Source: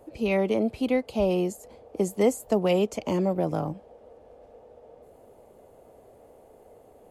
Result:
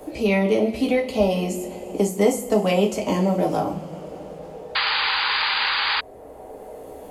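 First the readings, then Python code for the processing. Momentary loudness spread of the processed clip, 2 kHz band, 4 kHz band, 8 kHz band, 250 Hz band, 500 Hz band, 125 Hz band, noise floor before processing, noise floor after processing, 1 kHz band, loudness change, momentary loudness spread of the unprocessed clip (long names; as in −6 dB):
18 LU, +15.5 dB, +18.5 dB, +7.0 dB, +4.5 dB, +4.5 dB, +4.5 dB, −54 dBFS, −41 dBFS, +10.0 dB, +4.5 dB, 9 LU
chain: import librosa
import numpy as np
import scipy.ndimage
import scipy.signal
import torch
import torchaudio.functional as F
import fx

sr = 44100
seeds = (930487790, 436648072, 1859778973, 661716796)

y = fx.rev_double_slope(x, sr, seeds[0], early_s=0.29, late_s=2.9, knee_db=-22, drr_db=-1.0)
y = fx.spec_paint(y, sr, seeds[1], shape='noise', start_s=4.75, length_s=1.26, low_hz=770.0, high_hz=4900.0, level_db=-25.0)
y = fx.band_squash(y, sr, depth_pct=40)
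y = y * librosa.db_to_amplitude(2.5)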